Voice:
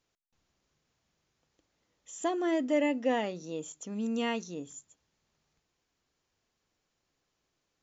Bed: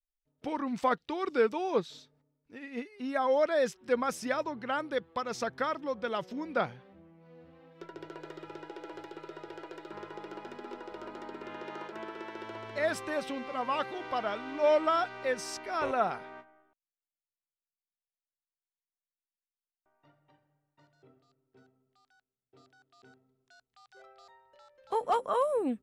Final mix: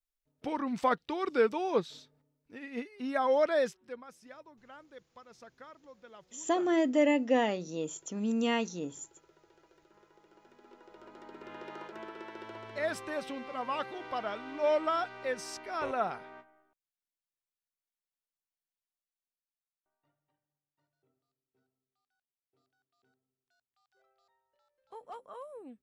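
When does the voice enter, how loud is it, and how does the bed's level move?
4.25 s, +2.0 dB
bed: 3.59 s 0 dB
4.04 s -19.5 dB
10.25 s -19.5 dB
11.57 s -3 dB
18.86 s -3 dB
20.36 s -17.5 dB

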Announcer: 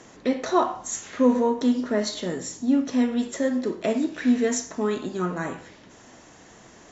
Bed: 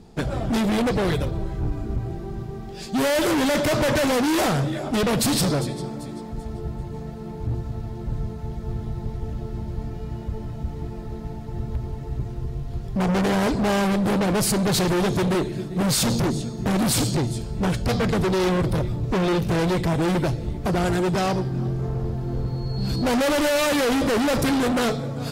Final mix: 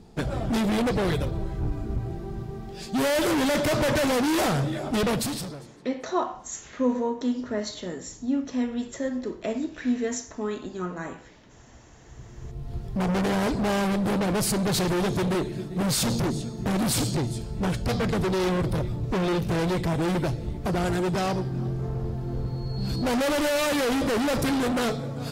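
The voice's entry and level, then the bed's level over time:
5.60 s, -5.0 dB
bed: 5.10 s -2.5 dB
5.84 s -25.5 dB
11.85 s -25.5 dB
12.70 s -3.5 dB

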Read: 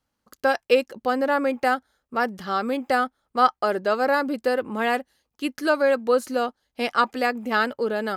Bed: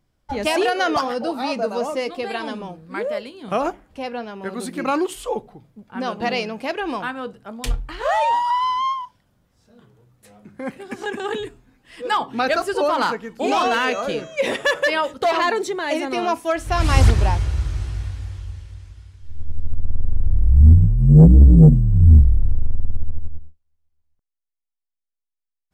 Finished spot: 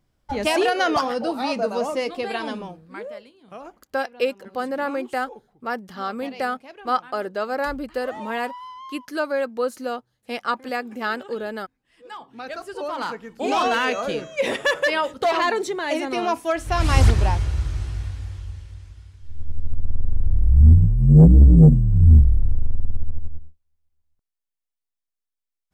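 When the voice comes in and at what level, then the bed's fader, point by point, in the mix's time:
3.50 s, -4.0 dB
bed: 2.56 s -0.5 dB
3.49 s -17.5 dB
12.17 s -17.5 dB
13.60 s -1.5 dB

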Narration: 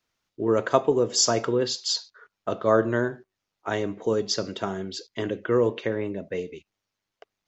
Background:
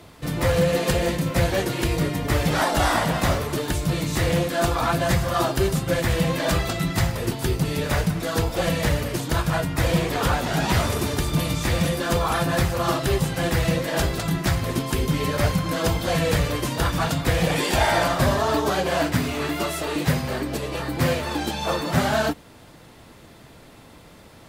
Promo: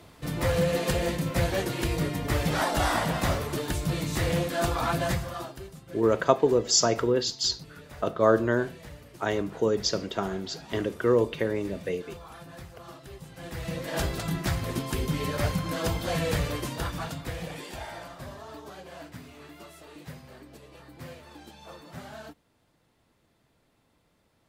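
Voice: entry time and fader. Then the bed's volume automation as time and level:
5.55 s, -0.5 dB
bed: 5.05 s -5 dB
5.70 s -23 dB
13.19 s -23 dB
13.98 s -6 dB
16.53 s -6 dB
18.05 s -21.5 dB

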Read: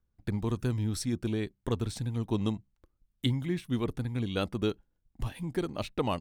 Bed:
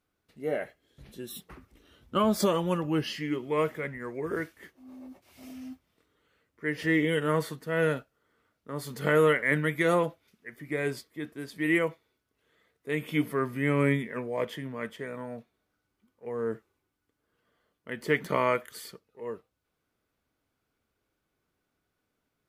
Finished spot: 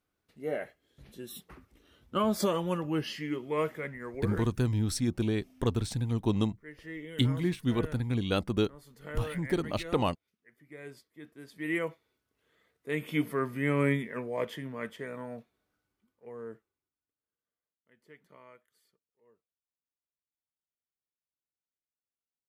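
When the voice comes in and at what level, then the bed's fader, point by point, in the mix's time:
3.95 s, +2.0 dB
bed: 4.28 s -3 dB
4.67 s -17 dB
10.68 s -17 dB
12.15 s -2 dB
15.75 s -2 dB
17.85 s -29 dB

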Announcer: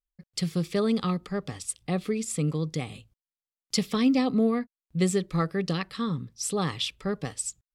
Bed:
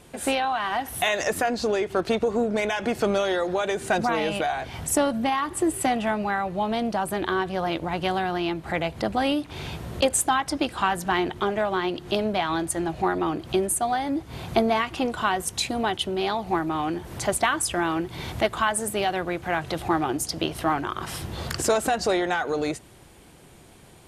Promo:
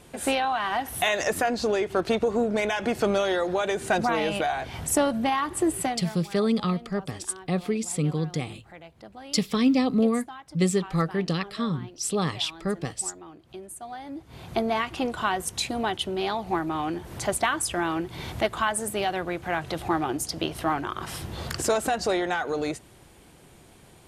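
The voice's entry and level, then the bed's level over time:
5.60 s, +1.5 dB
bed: 5.79 s -0.5 dB
6.21 s -19.5 dB
13.45 s -19.5 dB
14.83 s -2 dB

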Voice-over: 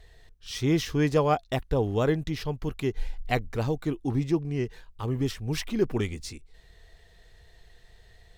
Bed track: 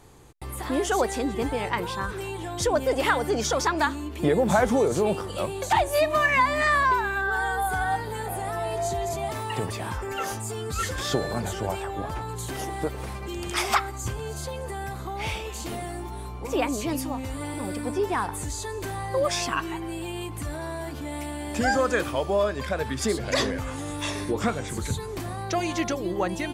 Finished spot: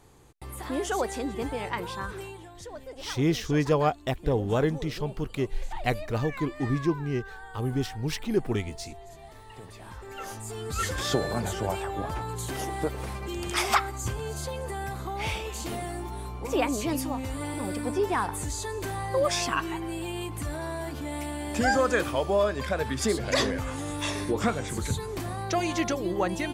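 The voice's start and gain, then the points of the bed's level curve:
2.55 s, -0.5 dB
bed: 2.19 s -4.5 dB
2.65 s -18.5 dB
9.45 s -18.5 dB
10.85 s -0.5 dB

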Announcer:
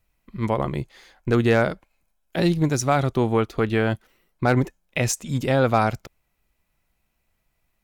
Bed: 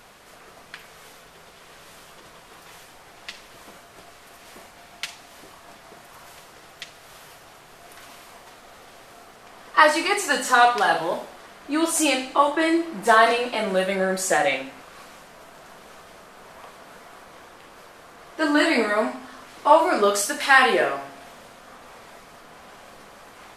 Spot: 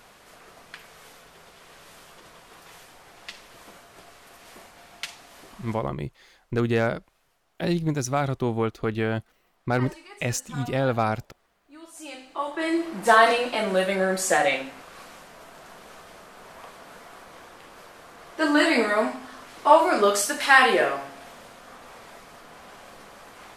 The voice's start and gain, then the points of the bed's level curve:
5.25 s, -4.5 dB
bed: 5.74 s -2.5 dB
5.96 s -24 dB
11.87 s -24 dB
12.87 s -0.5 dB

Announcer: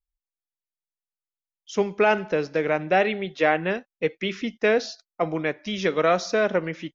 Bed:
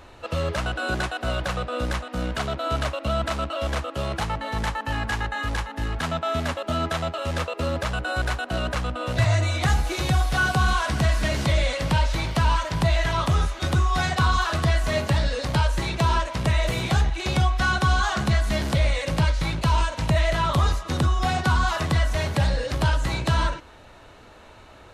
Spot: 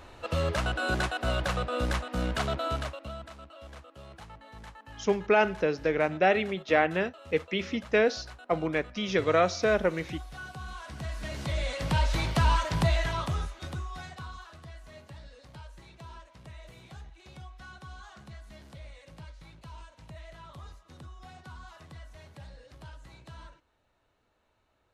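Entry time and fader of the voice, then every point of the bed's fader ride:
3.30 s, -3.0 dB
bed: 2.59 s -2.5 dB
3.33 s -20.5 dB
10.66 s -20.5 dB
12.13 s -3 dB
12.80 s -3 dB
14.56 s -25.5 dB

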